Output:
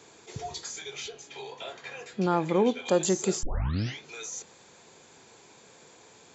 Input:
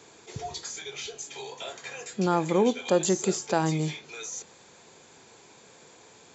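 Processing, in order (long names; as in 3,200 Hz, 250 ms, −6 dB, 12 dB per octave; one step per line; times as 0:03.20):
0:01.08–0:02.86: low-pass filter 4,200 Hz 12 dB per octave
0:03.43: tape start 0.56 s
level −1 dB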